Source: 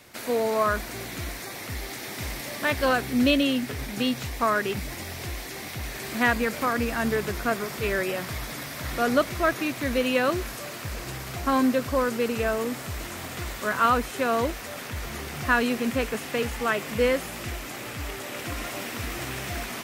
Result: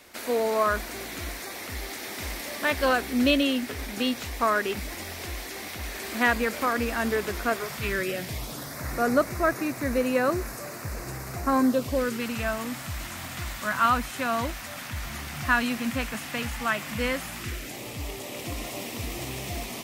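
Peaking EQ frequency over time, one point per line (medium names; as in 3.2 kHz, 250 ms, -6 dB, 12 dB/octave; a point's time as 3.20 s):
peaking EQ -14.5 dB 0.58 oct
7.49 s 130 Hz
7.92 s 650 Hz
8.80 s 3.2 kHz
11.62 s 3.2 kHz
12.28 s 430 Hz
17.32 s 430 Hz
17.79 s 1.5 kHz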